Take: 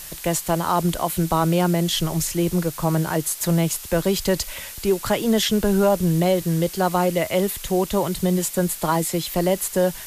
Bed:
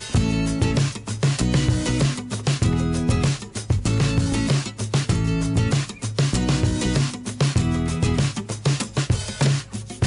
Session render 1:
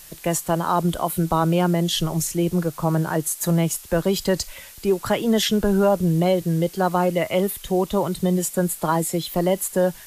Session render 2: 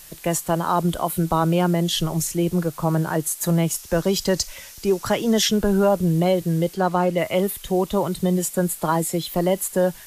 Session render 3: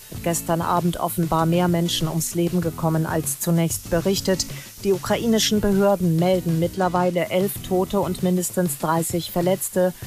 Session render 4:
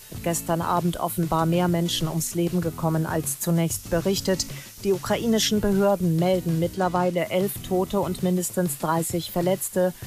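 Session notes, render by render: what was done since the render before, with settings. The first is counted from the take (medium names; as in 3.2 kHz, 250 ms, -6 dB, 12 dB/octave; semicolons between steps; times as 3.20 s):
noise print and reduce 7 dB
3.74–5.51 s: peaking EQ 5.8 kHz +7 dB 0.48 oct; 6.74–7.18 s: treble shelf 9.8 kHz -11 dB
add bed -15.5 dB
trim -2.5 dB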